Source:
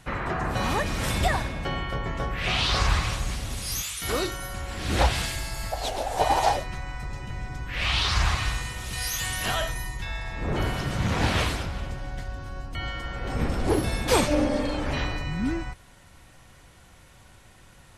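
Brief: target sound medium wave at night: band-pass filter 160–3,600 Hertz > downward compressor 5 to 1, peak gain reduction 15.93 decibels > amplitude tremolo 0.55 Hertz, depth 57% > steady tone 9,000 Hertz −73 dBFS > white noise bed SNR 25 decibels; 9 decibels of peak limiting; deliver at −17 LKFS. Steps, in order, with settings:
brickwall limiter −18 dBFS
band-pass filter 160–3,600 Hz
downward compressor 5 to 1, threshold −42 dBFS
amplitude tremolo 0.55 Hz, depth 57%
steady tone 9,000 Hz −73 dBFS
white noise bed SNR 25 dB
level +29 dB

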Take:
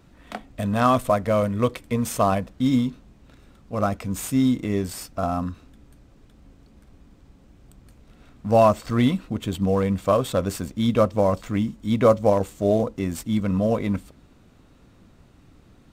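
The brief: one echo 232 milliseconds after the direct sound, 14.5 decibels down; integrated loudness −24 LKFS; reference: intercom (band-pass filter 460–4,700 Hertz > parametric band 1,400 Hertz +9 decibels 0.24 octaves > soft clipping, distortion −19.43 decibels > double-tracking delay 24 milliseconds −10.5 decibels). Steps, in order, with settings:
band-pass filter 460–4,700 Hz
parametric band 1,400 Hz +9 dB 0.24 octaves
single-tap delay 232 ms −14.5 dB
soft clipping −9.5 dBFS
double-tracking delay 24 ms −10.5 dB
level +2 dB

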